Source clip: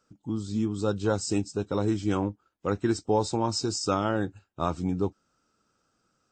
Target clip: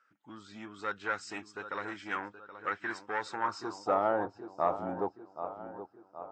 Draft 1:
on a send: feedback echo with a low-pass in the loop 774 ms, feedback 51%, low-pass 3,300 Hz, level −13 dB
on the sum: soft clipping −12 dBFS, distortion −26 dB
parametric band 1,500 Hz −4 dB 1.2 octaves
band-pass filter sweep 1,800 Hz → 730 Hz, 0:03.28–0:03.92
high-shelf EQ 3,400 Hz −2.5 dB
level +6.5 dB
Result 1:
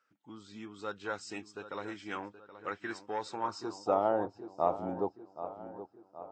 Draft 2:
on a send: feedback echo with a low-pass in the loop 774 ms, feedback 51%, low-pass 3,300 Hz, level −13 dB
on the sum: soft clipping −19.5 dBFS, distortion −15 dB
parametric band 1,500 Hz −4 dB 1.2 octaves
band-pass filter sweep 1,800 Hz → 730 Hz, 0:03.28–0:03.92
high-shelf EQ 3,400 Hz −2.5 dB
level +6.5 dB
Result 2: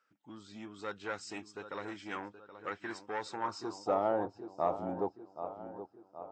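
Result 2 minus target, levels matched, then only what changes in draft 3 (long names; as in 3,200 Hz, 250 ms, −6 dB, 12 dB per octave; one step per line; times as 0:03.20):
2,000 Hz band −4.5 dB
change: parametric band 1,500 Hz +4 dB 1.2 octaves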